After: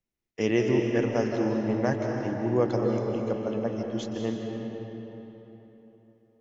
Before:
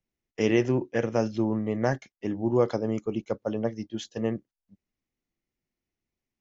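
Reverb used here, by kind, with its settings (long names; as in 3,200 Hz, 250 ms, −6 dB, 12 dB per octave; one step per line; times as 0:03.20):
comb and all-pass reverb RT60 3.6 s, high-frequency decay 0.7×, pre-delay 115 ms, DRR 1 dB
level −2 dB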